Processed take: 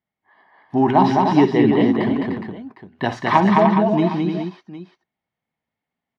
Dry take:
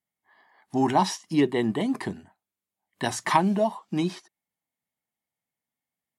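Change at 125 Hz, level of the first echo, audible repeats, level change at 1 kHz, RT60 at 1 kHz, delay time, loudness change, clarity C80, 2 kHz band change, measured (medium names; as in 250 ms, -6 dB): +10.0 dB, -12.5 dB, 5, +8.5 dB, no reverb, 58 ms, +8.5 dB, no reverb, +7.0 dB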